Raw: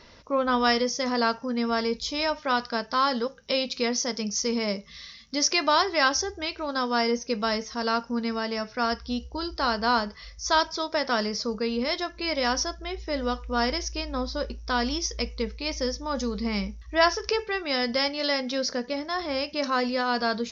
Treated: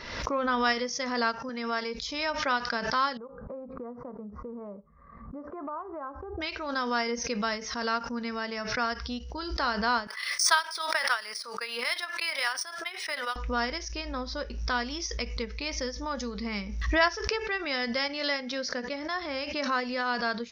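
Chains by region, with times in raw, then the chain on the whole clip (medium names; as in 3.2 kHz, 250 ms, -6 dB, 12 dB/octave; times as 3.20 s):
1.49–1.94 s: high-pass 300 Hz 6 dB/octave + tape noise reduction on one side only encoder only
3.17–6.41 s: elliptic low-pass 1.2 kHz, stop band 60 dB + compression 3:1, threshold -32 dBFS
10.07–13.36 s: high-pass 1.1 kHz + transient shaper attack +8 dB, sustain -1 dB + decimation joined by straight lines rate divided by 3×
whole clip: peaking EQ 1.8 kHz +6.5 dB 1.5 oct; transient shaper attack +1 dB, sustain -5 dB; swell ahead of each attack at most 50 dB/s; trim -7 dB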